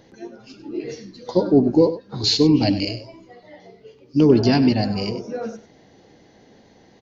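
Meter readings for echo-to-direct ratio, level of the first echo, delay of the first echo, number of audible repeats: −13.5 dB, −13.5 dB, 98 ms, 1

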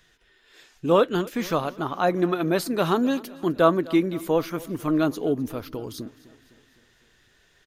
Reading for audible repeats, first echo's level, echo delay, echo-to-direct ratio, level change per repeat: 3, −21.0 dB, 255 ms, −19.0 dB, −4.5 dB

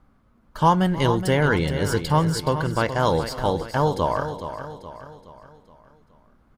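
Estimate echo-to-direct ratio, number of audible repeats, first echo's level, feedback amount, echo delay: −8.5 dB, 6, −18.5 dB, repeats not evenly spaced, 313 ms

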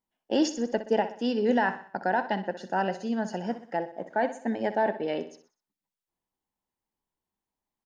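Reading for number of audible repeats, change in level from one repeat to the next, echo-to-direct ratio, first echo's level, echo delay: 4, −7.0 dB, −11.5 dB, −12.5 dB, 62 ms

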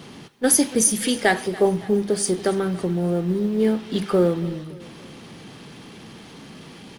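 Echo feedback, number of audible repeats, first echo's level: 49%, 3, −19.5 dB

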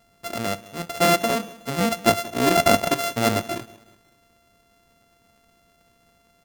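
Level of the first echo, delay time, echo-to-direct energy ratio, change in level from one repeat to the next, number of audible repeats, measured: −20.5 dB, 184 ms, −19.5 dB, −7.5 dB, 2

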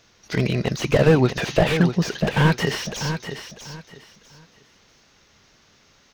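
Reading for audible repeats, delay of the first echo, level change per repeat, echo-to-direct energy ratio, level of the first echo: 3, 645 ms, −12.5 dB, −8.5 dB, −9.0 dB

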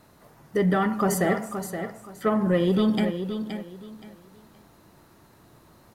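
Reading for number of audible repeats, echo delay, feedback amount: 3, 522 ms, 25%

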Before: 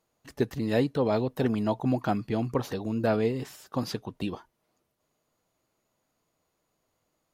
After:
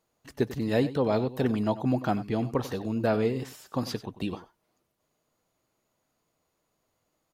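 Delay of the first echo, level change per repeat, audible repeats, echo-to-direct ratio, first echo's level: 94 ms, repeats not evenly spaced, 1, −15.0 dB, −15.0 dB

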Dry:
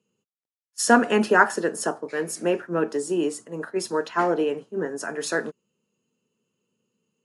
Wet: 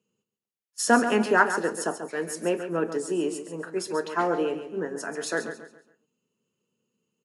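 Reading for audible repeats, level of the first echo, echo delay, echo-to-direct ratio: 3, −10.0 dB, 138 ms, −9.5 dB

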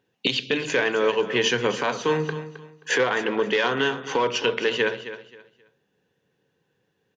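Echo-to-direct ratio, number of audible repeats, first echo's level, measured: −12.5 dB, 2, −13.0 dB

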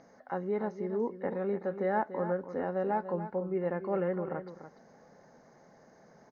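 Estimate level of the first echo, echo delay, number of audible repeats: −11.0 dB, 290 ms, 1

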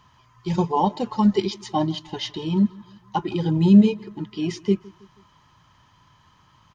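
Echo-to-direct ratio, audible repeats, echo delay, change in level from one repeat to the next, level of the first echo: −23.0 dB, 2, 161 ms, −6.5 dB, −24.0 dB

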